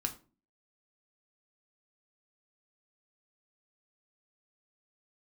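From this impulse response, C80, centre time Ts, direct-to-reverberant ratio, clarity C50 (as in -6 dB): 19.5 dB, 8 ms, 5.0 dB, 14.5 dB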